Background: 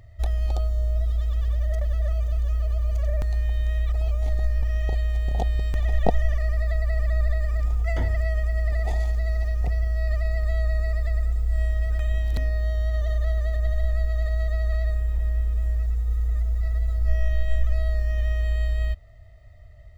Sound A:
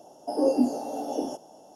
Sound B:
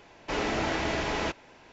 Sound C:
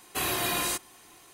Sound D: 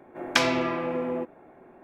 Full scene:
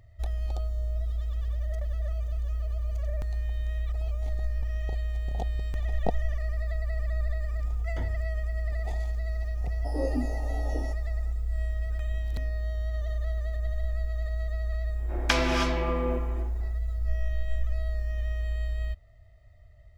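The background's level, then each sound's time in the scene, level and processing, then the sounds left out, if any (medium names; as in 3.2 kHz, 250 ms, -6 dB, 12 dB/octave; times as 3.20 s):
background -6.5 dB
9.57 s: add A -8.5 dB
14.94 s: add D -3 dB, fades 0.10 s + gated-style reverb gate 340 ms rising, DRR 4 dB
not used: B, C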